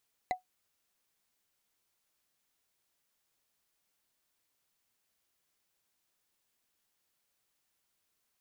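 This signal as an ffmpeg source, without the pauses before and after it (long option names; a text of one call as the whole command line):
ffmpeg -f lavfi -i "aevalsrc='0.0668*pow(10,-3*t/0.13)*sin(2*PI*737*t)+0.0335*pow(10,-3*t/0.038)*sin(2*PI*2031.9*t)+0.0168*pow(10,-3*t/0.017)*sin(2*PI*3982.7*t)+0.00841*pow(10,-3*t/0.009)*sin(2*PI*6583.6*t)+0.00422*pow(10,-3*t/0.006)*sin(2*PI*9831.6*t)':duration=0.45:sample_rate=44100" out.wav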